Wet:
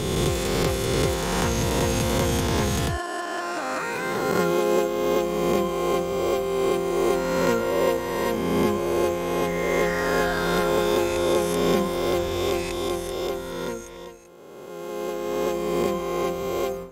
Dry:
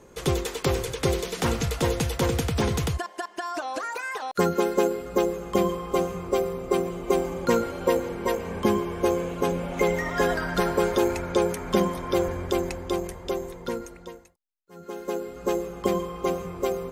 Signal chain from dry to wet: spectral swells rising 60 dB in 2.25 s; ending taper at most 140 dB/s; gain -2.5 dB

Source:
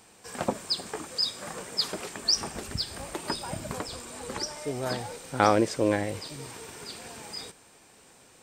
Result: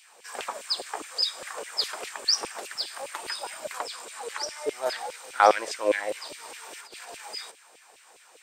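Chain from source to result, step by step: 6.64–7.21 negative-ratio compressor -44 dBFS, ratio -0.5; LFO high-pass saw down 4.9 Hz 410–2900 Hz

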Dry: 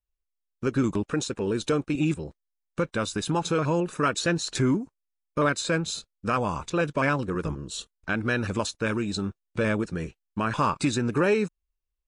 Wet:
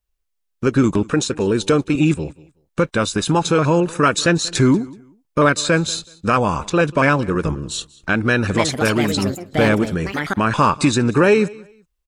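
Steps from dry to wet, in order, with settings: 8.22–10.63 echoes that change speed 0.31 s, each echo +5 st, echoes 2, each echo -6 dB; feedback echo 0.188 s, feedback 23%, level -22.5 dB; gain +9 dB

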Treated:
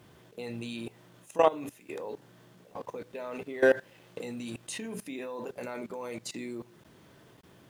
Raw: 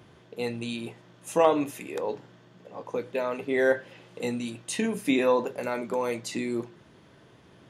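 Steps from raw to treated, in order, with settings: 2.7–5.02 sample leveller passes 1; level quantiser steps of 19 dB; bit-crush 11-bit

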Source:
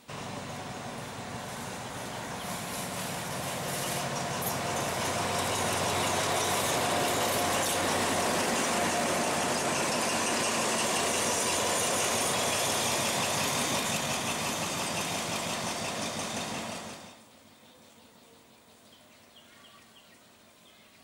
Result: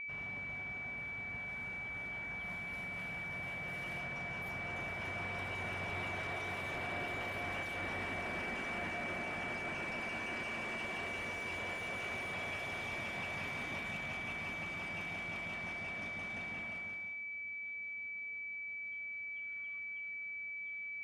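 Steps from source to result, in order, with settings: ten-band EQ 125 Hz -11 dB, 250 Hz -10 dB, 500 Hz -12 dB, 1000 Hz -12 dB, 2000 Hz -3 dB, 4000 Hz -11 dB; wavefolder -29.5 dBFS; whine 2300 Hz -38 dBFS; air absorption 380 m; gain +2 dB

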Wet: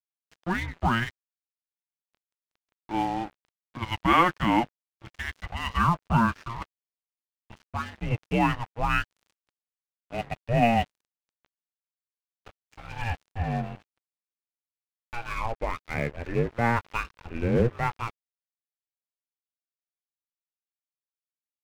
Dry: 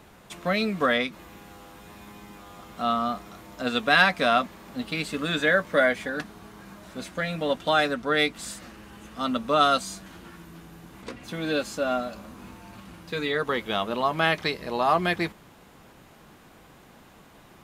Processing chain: speed glide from 99% -> 64%; mistuned SSB -350 Hz 300–3100 Hz; crossover distortion -38 dBFS

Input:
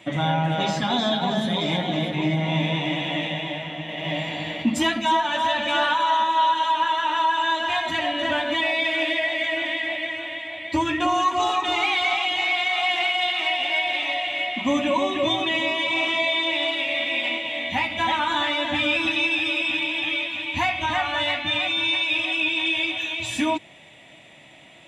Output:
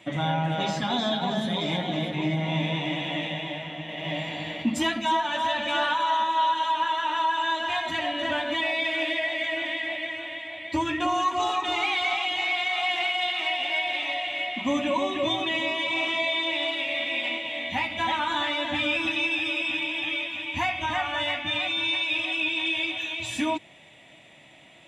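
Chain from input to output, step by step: 18.88–21.55 notch 4100 Hz, Q 8; gain -3.5 dB

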